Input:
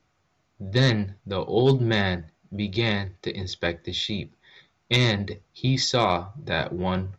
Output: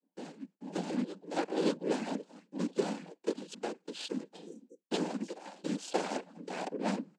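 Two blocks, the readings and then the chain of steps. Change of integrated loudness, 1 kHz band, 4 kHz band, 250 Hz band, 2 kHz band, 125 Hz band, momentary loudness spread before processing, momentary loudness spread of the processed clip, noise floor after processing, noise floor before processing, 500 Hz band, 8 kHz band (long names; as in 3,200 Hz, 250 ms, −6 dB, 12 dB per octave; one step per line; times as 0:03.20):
−12.0 dB, −9.5 dB, −17.5 dB, −7.5 dB, −16.5 dB, −22.5 dB, 12 LU, 14 LU, −82 dBFS, −70 dBFS, −9.0 dB, can't be measured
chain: running median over 41 samples
backwards echo 586 ms −16.5 dB
noise gate with hold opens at −40 dBFS
reverb reduction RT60 0.51 s
high-shelf EQ 3,900 Hz +11.5 dB
downward compressor 6 to 1, threshold −23 dBFS, peak gain reduction 8 dB
cochlear-implant simulation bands 8
amplitude tremolo 4.2 Hz, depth 52%
healed spectral selection 0:04.39–0:04.81, 540–5,600 Hz both
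linear-phase brick-wall high-pass 180 Hz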